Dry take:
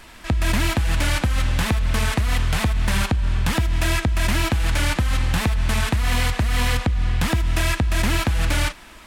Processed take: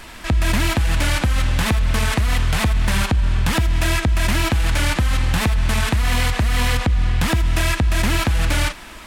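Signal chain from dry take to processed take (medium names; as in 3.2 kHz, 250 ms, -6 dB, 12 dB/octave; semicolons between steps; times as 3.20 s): peak limiter -17 dBFS, peak gain reduction 4.5 dB; trim +6 dB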